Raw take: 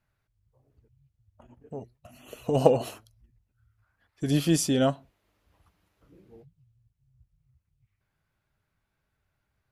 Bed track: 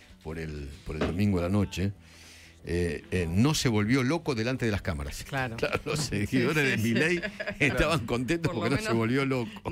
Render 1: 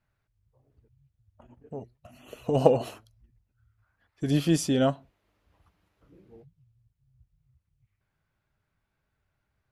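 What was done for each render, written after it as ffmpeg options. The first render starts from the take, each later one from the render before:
-af "highshelf=f=5700:g=-7"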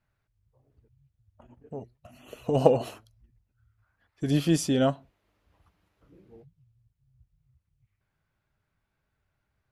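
-af anull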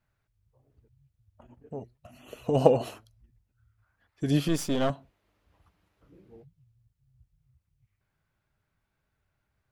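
-filter_complex "[0:a]asettb=1/sr,asplit=3[s0][s1][s2];[s0]atrim=end=4.484[s3];[s1]atrim=start=4.48:end=4.9,asetpts=PTS-STARTPTS,afade=t=in:d=0.004:c=qsin,afade=t=out:st=0.416:d=0.004:c=qsin,aeval=exprs='if(lt(val(0),0),0.251*val(0),val(0))':c=same[s4];[s2]atrim=start=4.896[s5];[s3][s4]acrossfade=d=0.004:c1=hsin:c2=qsin[s6];[s6][s5]acrossfade=d=0.004:c1=qsin:c2=hsin"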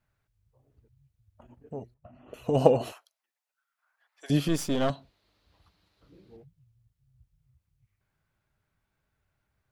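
-filter_complex "[0:a]asettb=1/sr,asplit=3[s0][s1][s2];[s0]atrim=end=1.944[s3];[s1]atrim=start=1.94:end=2.34,asetpts=PTS-STARTPTS,afade=t=in:d=0.004:c=qsin,afade=t=out:st=0.396:d=0.004:c=qsin,lowpass=1300[s4];[s2]atrim=start=2.336[s5];[s3][s4]acrossfade=d=0.004:c1=hsin:c2=qsin[s6];[s6][s5]acrossfade=d=0.004:c1=qsin:c2=hsin,asettb=1/sr,asplit=3[s7][s8][s9];[s7]atrim=end=2.924[s10];[s8]atrim=start=2.92:end=4.3,asetpts=PTS-STARTPTS,afade=t=in:d=0.004:c=qsin,afade=t=out:st=1.376:d=0.004:c=qsin,highpass=f=660:w=0.5412,highpass=f=660:w=1.3066[s11];[s9]atrim=start=4.296[s12];[s10][s11]acrossfade=d=0.004:c1=hsin:c2=qsin[s13];[s13][s12]acrossfade=d=0.004:c1=qsin:c2=hsin,asettb=1/sr,asplit=3[s14][s15][s16];[s14]atrim=end=4.884[s17];[s15]atrim=start=4.88:end=6.37,asetpts=PTS-STARTPTS,afade=t=in:d=0.004:c=qsin,afade=t=out:st=1.486:d=0.004:c=qsin,equalizer=f=4200:t=o:w=0.66:g=14[s18];[s16]atrim=start=6.366[s19];[s17][s18]acrossfade=d=0.004:c1=hsin:c2=qsin[s20];[s20][s19]acrossfade=d=0.004:c1=qsin:c2=hsin"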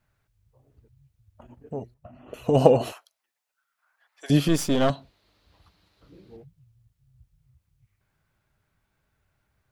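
-af "volume=1.78,alimiter=limit=0.891:level=0:latency=1"

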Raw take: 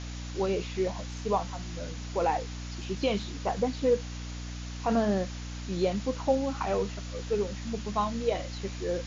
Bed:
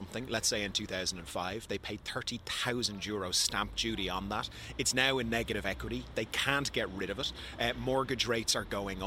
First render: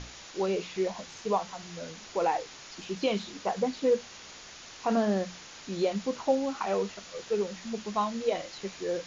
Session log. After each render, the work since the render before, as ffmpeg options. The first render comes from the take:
-af "bandreject=f=60:t=h:w=6,bandreject=f=120:t=h:w=6,bandreject=f=180:t=h:w=6,bandreject=f=240:t=h:w=6,bandreject=f=300:t=h:w=6"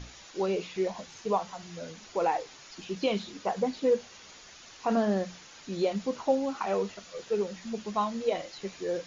-af "afftdn=nr=6:nf=-48"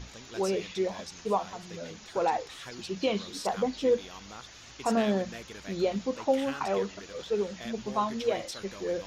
-filter_complex "[1:a]volume=0.282[s0];[0:a][s0]amix=inputs=2:normalize=0"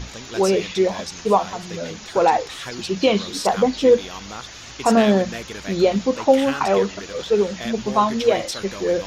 -af "volume=3.55"

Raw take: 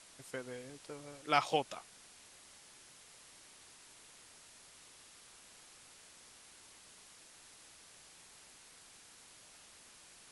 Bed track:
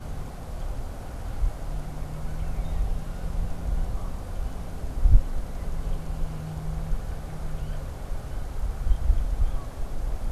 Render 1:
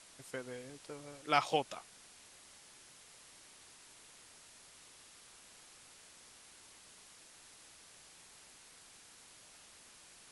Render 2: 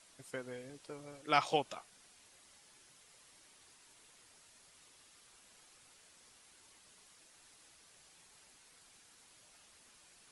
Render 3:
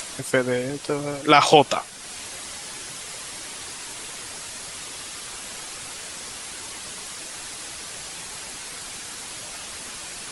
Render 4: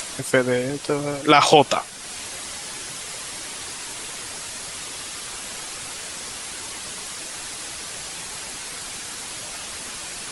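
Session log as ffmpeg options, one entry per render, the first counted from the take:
-af anull
-af "afftdn=nr=6:nf=-59"
-af "acompressor=mode=upward:threshold=0.00282:ratio=2.5,alimiter=level_in=13.3:limit=0.891:release=50:level=0:latency=1"
-af "volume=1.33,alimiter=limit=0.891:level=0:latency=1"

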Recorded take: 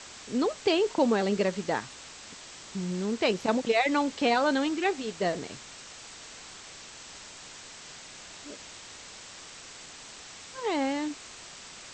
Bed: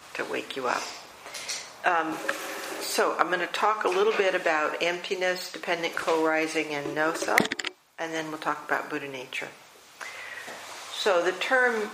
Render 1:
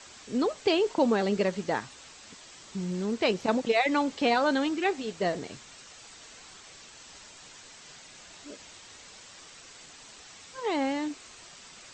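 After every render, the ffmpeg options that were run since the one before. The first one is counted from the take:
-af "afftdn=nr=6:nf=-47"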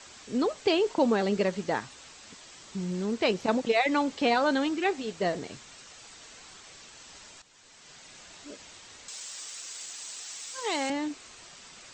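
-filter_complex "[0:a]asettb=1/sr,asplit=3[s0][s1][s2];[s0]atrim=end=9.084[s3];[s1]atrim=start=9.08:end=10.9,asetpts=PTS-STARTPTS,afade=t=in:d=0.004:c=qsin,afade=t=out:st=1.816:d=0.004:c=qsin,aemphasis=mode=production:type=riaa[s4];[s2]atrim=start=10.896[s5];[s3][s4]acrossfade=d=0.004:c1=hsin:c2=qsin[s6];[s6][s5]acrossfade=d=0.004:c1=qsin:c2=hsin,asplit=2[s7][s8];[s7]atrim=end=7.42,asetpts=PTS-STARTPTS,afade=t=out:st=7.416:d=0.004:c=hsin:silence=0.199526[s9];[s8]atrim=start=7.42,asetpts=PTS-STARTPTS,afade=t=in:d=0.68:silence=0.199526[s10];[s9][s10]concat=n=2:v=0:a=1"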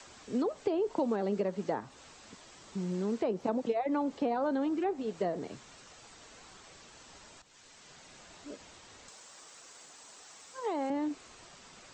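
-filter_complex "[0:a]acrossover=split=110|1100[s0][s1][s2];[s2]alimiter=level_in=1.78:limit=0.0631:level=0:latency=1:release=352,volume=0.562[s3];[s0][s1][s3]amix=inputs=3:normalize=0,acrossover=split=150|1400[s4][s5][s6];[s4]acompressor=threshold=0.00141:ratio=4[s7];[s5]acompressor=threshold=0.0398:ratio=4[s8];[s6]acompressor=threshold=0.00178:ratio=4[s9];[s7][s8][s9]amix=inputs=3:normalize=0"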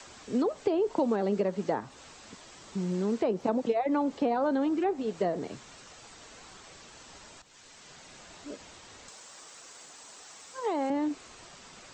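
-af "volume=1.5"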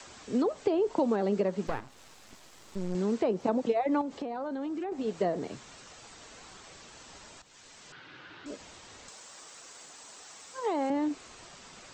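-filter_complex "[0:a]asettb=1/sr,asplit=3[s0][s1][s2];[s0]atrim=end=1.674[s3];[s1]atrim=start=1.67:end=2.95,asetpts=PTS-STARTPTS,afade=t=in:d=0.004:c=qsin,afade=t=out:st=1.276:d=0.004:c=qsin,aeval=exprs='max(val(0),0)':c=same[s4];[s2]atrim=start=2.946[s5];[s3][s4]acrossfade=d=0.004:c1=hsin:c2=qsin[s6];[s6][s5]acrossfade=d=0.004:c1=qsin:c2=hsin,asettb=1/sr,asplit=3[s7][s8][s9];[s7]atrim=end=4.014[s10];[s8]atrim=start=4.01:end=4.92,asetpts=PTS-STARTPTS,afade=t=in:d=0.004:c=qsin,afade=t=out:st=0.906:d=0.004:c=qsin,acompressor=threshold=0.0251:ratio=6:attack=3.2:release=140:knee=1:detection=peak[s11];[s9]atrim=start=4.916[s12];[s10][s11]acrossfade=d=0.004:c1=hsin:c2=qsin[s13];[s13][s12]acrossfade=d=0.004:c1=qsin:c2=hsin,asettb=1/sr,asplit=3[s14][s15][s16];[s14]atrim=end=7.924[s17];[s15]atrim=start=7.92:end=8.46,asetpts=PTS-STARTPTS,afade=t=in:d=0.004:c=qsin,afade=t=out:st=0.536:d=0.004:c=qsin,highpass=110,equalizer=f=120:t=q:w=4:g=7,equalizer=f=210:t=q:w=4:g=-8,equalizer=f=310:t=q:w=4:g=7,equalizer=f=660:t=q:w=4:g=-9,equalizer=f=1500:t=q:w=4:g=10,equalizer=f=3000:t=q:w=4:g=3,lowpass=f=4000:w=0.5412,lowpass=f=4000:w=1.3066[s18];[s16]atrim=start=8.456[s19];[s17][s18]acrossfade=d=0.004:c1=hsin:c2=qsin[s20];[s20][s19]acrossfade=d=0.004:c1=qsin:c2=hsin"

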